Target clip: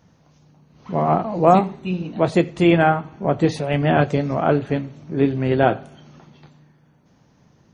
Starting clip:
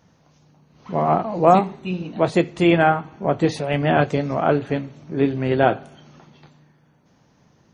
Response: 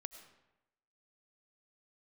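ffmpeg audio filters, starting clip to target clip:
-filter_complex "[0:a]asplit=2[link_01][link_02];[1:a]atrim=start_sample=2205,atrim=end_sample=4410,lowshelf=frequency=420:gain=10.5[link_03];[link_02][link_03]afir=irnorm=-1:irlink=0,volume=-5.5dB[link_04];[link_01][link_04]amix=inputs=2:normalize=0,volume=-3dB"

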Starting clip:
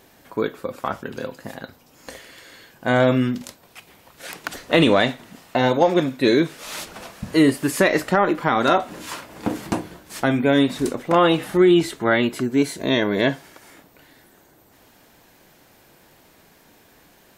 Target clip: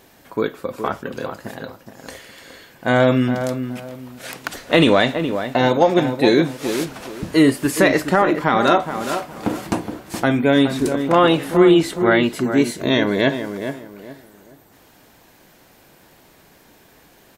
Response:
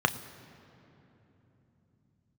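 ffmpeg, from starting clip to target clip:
-filter_complex "[0:a]asplit=2[link_01][link_02];[link_02]adelay=419,lowpass=frequency=1600:poles=1,volume=-8dB,asplit=2[link_03][link_04];[link_04]adelay=419,lowpass=frequency=1600:poles=1,volume=0.29,asplit=2[link_05][link_06];[link_06]adelay=419,lowpass=frequency=1600:poles=1,volume=0.29[link_07];[link_01][link_03][link_05][link_07]amix=inputs=4:normalize=0,volume=2dB"

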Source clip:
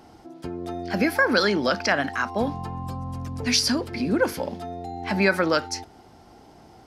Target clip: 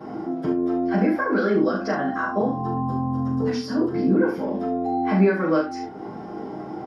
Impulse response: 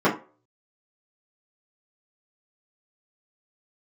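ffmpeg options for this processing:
-filter_complex "[0:a]asettb=1/sr,asplit=3[link_01][link_02][link_03];[link_01]atrim=end=1.504[link_04];[link_02]atrim=start=1.5:end=4.12,asetpts=PTS-STARTPTS,afade=type=in:duration=0.004:curve=qsin,afade=type=out:start_time=2.616:duration=0.004:curve=qsin,equalizer=frequency=2300:width=3.5:gain=-13[link_05];[link_03]atrim=start=4.116[link_06];[link_04][link_05]acrossfade=duration=0.004:curve1=hsin:curve2=qsin[link_07];[link_07][link_06]acrossfade=duration=0.004:curve1=qsin:curve2=hsin,acompressor=threshold=-40dB:ratio=3,aecho=1:1:38|70:0.562|0.355[link_08];[1:a]atrim=start_sample=2205,atrim=end_sample=3087[link_09];[link_08][link_09]afir=irnorm=-1:irlink=0,volume=-7.5dB"

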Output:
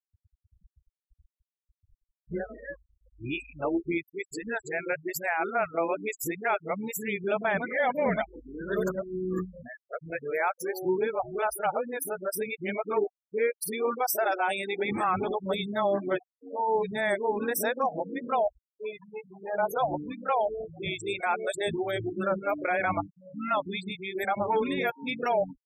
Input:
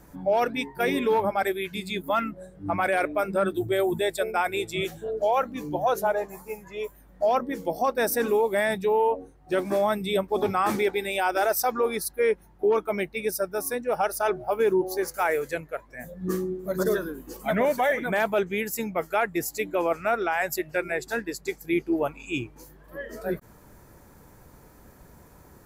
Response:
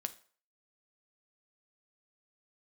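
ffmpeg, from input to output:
-filter_complex "[0:a]areverse,acrossover=split=420[link_01][link_02];[link_02]adelay=30[link_03];[link_01][link_03]amix=inputs=2:normalize=0,adynamicequalizer=threshold=0.00158:dfrequency=8000:dqfactor=5.9:tfrequency=8000:tqfactor=5.9:attack=5:release=100:ratio=0.375:range=2:mode=boostabove:tftype=bell,afftfilt=real='re*gte(hypot(re,im),0.0282)':imag='im*gte(hypot(re,im),0.0282)':win_size=1024:overlap=0.75,volume=-2dB"

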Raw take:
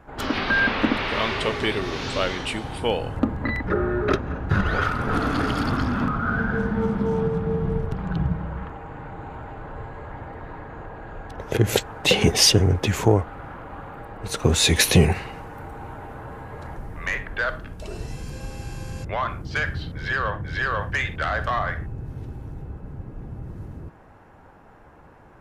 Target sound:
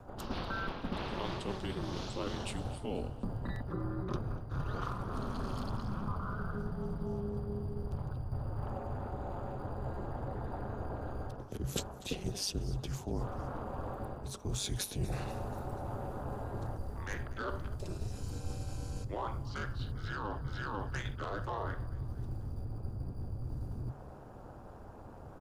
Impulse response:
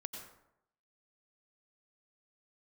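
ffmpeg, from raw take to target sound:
-filter_complex "[0:a]equalizer=frequency=2200:width_type=o:width=1:gain=-13.5,areverse,acompressor=threshold=-36dB:ratio=6,areverse,asplit=5[link_01][link_02][link_03][link_04][link_05];[link_02]adelay=242,afreqshift=37,volume=-19.5dB[link_06];[link_03]adelay=484,afreqshift=74,volume=-24.7dB[link_07];[link_04]adelay=726,afreqshift=111,volume=-29.9dB[link_08];[link_05]adelay=968,afreqshift=148,volume=-35.1dB[link_09];[link_01][link_06][link_07][link_08][link_09]amix=inputs=5:normalize=0,aeval=exprs='val(0)*sin(2*PI*100*n/s)':channel_layout=same,acrossover=split=120[link_10][link_11];[link_10]acrusher=samples=9:mix=1:aa=0.000001[link_12];[link_12][link_11]amix=inputs=2:normalize=0,afreqshift=-140,volume=4dB"

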